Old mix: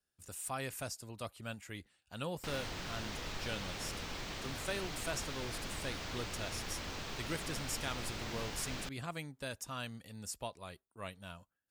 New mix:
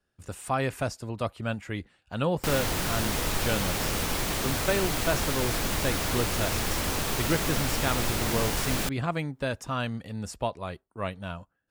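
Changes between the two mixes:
background: remove high-frequency loss of the air 190 metres
master: remove first-order pre-emphasis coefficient 0.8

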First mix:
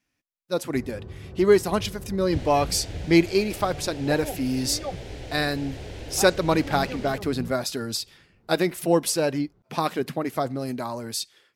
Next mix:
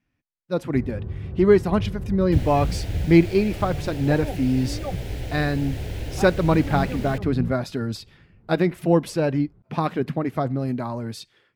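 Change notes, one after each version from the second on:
second sound: remove head-to-tape spacing loss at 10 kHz 22 dB
master: add bass and treble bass +9 dB, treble −14 dB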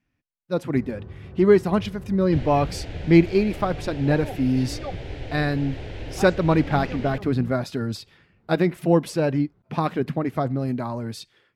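first sound: add spectral tilt +2.5 dB per octave
second sound: add low-pass filter 3,800 Hz 12 dB per octave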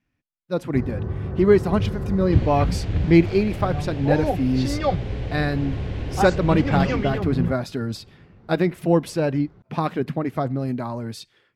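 first sound +12.0 dB

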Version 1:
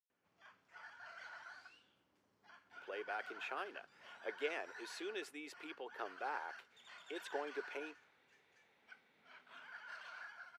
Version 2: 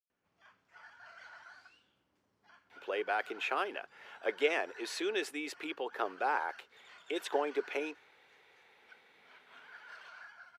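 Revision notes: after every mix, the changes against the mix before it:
speech +10.5 dB
background: add low-shelf EQ 62 Hz +11 dB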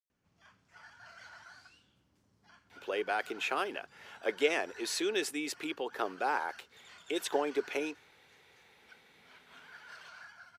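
master: add bass and treble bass +12 dB, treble +9 dB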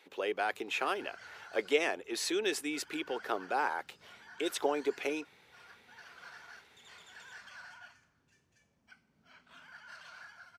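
speech: entry −2.70 s

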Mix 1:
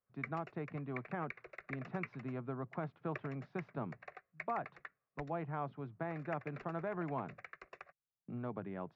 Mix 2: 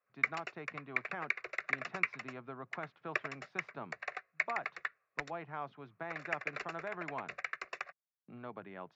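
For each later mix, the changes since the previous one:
background +9.5 dB
master: add spectral tilt +3.5 dB per octave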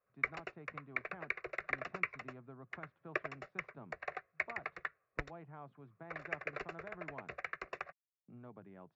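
speech −11.5 dB
master: add spectral tilt −3.5 dB per octave

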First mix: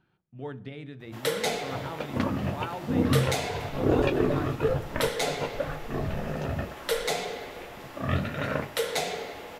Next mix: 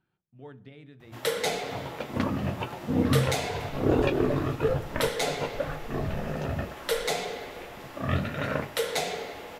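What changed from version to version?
speech −8.0 dB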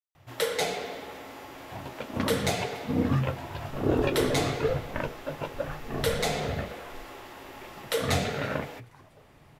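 speech: muted
first sound: entry −0.85 s
reverb: off

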